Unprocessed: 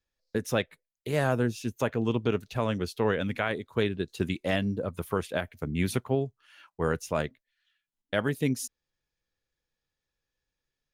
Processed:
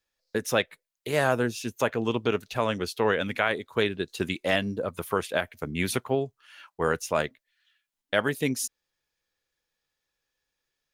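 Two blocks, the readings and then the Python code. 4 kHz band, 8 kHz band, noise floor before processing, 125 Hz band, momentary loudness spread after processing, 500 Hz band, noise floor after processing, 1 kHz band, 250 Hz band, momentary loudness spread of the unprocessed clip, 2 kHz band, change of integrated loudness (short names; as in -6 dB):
+5.5 dB, +5.5 dB, under -85 dBFS, -3.5 dB, 7 LU, +2.5 dB, -84 dBFS, +4.5 dB, -1.0 dB, 6 LU, +5.0 dB, +2.0 dB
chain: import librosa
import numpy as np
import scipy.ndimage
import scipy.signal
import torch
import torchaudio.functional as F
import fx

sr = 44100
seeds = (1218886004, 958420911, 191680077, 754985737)

y = fx.low_shelf(x, sr, hz=290.0, db=-11.0)
y = y * 10.0 ** (5.5 / 20.0)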